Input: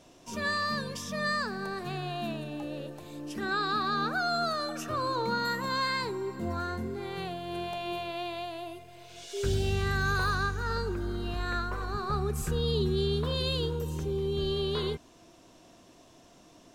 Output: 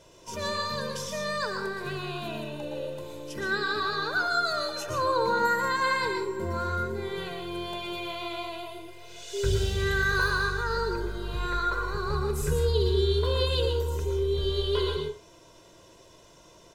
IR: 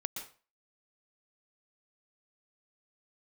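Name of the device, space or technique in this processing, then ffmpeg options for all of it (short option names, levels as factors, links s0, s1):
microphone above a desk: -filter_complex "[0:a]aecho=1:1:2:0.68[s0];[1:a]atrim=start_sample=2205[s1];[s0][s1]afir=irnorm=-1:irlink=0,volume=1.19"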